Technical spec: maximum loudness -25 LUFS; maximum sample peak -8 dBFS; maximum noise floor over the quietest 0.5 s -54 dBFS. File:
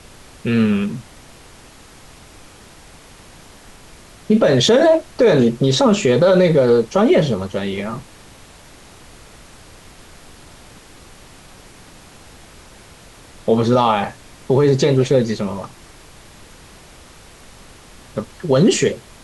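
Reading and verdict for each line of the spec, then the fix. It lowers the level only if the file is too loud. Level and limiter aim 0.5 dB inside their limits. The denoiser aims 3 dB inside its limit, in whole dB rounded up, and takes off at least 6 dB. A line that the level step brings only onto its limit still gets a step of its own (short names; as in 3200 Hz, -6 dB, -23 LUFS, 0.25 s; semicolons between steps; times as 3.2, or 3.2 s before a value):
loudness -16.0 LUFS: fail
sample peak -5.0 dBFS: fail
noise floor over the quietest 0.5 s -43 dBFS: fail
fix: denoiser 6 dB, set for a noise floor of -43 dBFS; gain -9.5 dB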